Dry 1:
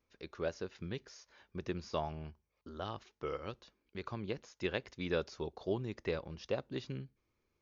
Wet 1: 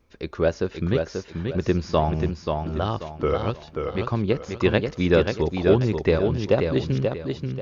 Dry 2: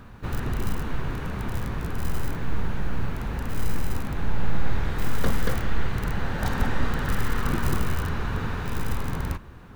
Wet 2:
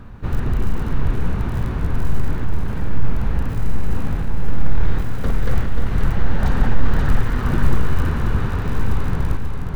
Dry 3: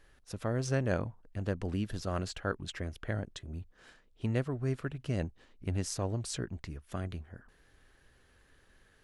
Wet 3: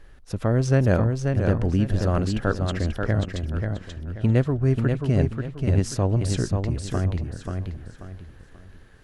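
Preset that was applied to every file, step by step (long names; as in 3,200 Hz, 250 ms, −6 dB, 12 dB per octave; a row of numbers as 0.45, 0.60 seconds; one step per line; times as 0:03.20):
spectral tilt −1.5 dB per octave
in parallel at −11 dB: wave folding −12.5 dBFS
on the sum: feedback echo with a swinging delay time 535 ms, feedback 32%, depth 51 cents, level −5 dB
loudness normalisation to −24 LKFS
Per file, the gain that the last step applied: +12.0, 0.0, +6.0 decibels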